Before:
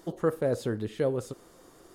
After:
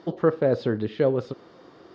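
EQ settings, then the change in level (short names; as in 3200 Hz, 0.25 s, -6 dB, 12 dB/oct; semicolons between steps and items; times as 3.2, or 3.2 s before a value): HPF 110 Hz 12 dB/oct; synth low-pass 5000 Hz, resonance Q 1.9; air absorption 250 m; +6.5 dB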